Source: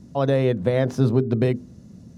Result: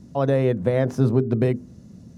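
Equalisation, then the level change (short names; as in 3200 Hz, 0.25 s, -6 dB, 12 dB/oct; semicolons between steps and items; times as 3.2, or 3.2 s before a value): dynamic EQ 3800 Hz, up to -6 dB, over -50 dBFS, Q 1.3; 0.0 dB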